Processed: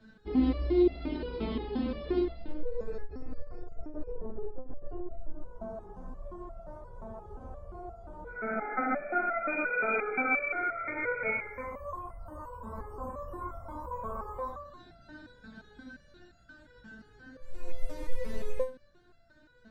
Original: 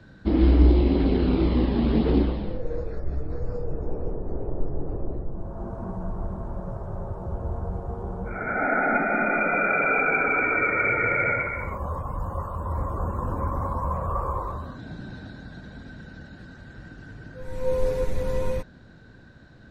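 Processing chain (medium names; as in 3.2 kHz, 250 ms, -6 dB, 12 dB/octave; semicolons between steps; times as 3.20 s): 2.86–5.15 s: compressor with a negative ratio -28 dBFS, ratio -0.5; resonator arpeggio 5.7 Hz 220–680 Hz; trim +7 dB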